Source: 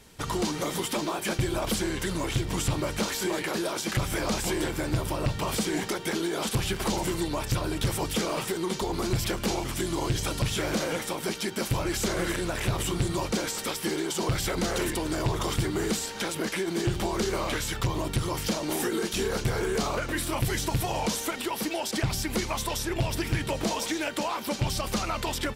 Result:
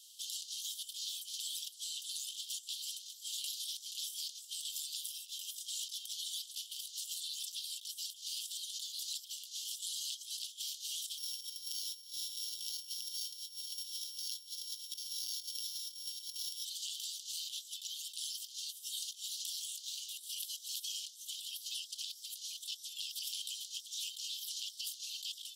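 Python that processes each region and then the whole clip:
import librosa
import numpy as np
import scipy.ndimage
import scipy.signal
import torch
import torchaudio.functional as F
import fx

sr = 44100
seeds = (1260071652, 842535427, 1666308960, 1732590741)

y = fx.chain(x, sr, fx.high_shelf(hz=9600.0, db=6.5),
    fx.over_compress(threshold_db=-33.0, ratio=-1.0),
    fx.notch(hz=4400.0, q=8.7), at=(5.1, 5.67))
y = fx.chain(y, sr, fx.sample_sort(block=8),
    fx.tremolo_shape(shape='saw_up', hz=2.1, depth_pct=45), at=(11.18, 16.65))
y = scipy.signal.sosfilt(scipy.signal.butter(16, 3000.0, 'highpass', fs=sr, output='sos'), y)
y = fx.peak_eq(y, sr, hz=8900.0, db=-2.0, octaves=0.26)
y = fx.over_compress(y, sr, threshold_db=-41.0, ratio=-0.5)
y = y * 10.0 ** (-1.5 / 20.0)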